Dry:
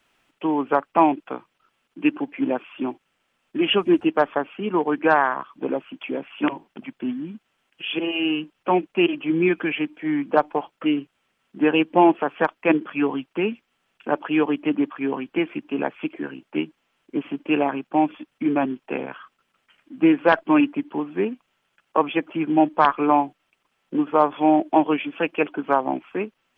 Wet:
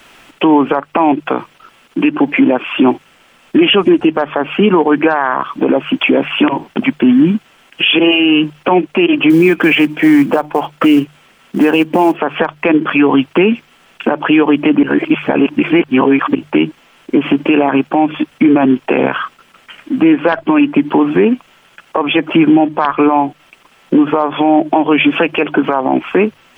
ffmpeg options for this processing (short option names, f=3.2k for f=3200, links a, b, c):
-filter_complex "[0:a]asettb=1/sr,asplit=3[a][b][c];[a]atrim=end=9.304[d];[b]atrim=start=9.3:end=12.17,asetpts=PTS-STARTPTS,afade=t=in:d=0.004:c=qsin,afade=t=out:st=2.866:d=0.004:c=qsin,acrusher=bits=8:mode=log:mix=0:aa=0.000001[e];[c]atrim=start=12.166[f];[d][e]acrossfade=d=0.004:c1=hsin:c2=qsin[g];[g][f]acrossfade=d=0.004:c1=qsin:c2=hsin,asplit=3[h][i][j];[h]atrim=end=14.832[k];[i]atrim=start=14.828:end=16.352,asetpts=PTS-STARTPTS,areverse[l];[j]atrim=start=16.348[m];[k][l]acrossfade=d=0.004:c1=hsin:c2=hsin[n];[n][m]acrossfade=d=0.004:c1=hsin:c2=hsin,bandreject=f=50:t=h:w=6,bandreject=f=100:t=h:w=6,bandreject=f=150:t=h:w=6,acompressor=threshold=-25dB:ratio=6,alimiter=level_in=24.5dB:limit=-1dB:release=50:level=0:latency=1,volume=-1dB"